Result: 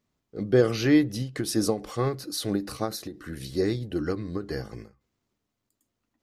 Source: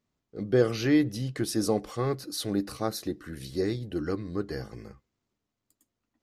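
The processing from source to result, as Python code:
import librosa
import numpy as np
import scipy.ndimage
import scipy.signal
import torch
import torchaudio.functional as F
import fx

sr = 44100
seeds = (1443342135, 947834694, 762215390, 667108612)

y = fx.end_taper(x, sr, db_per_s=170.0)
y = F.gain(torch.from_numpy(y), 3.0).numpy()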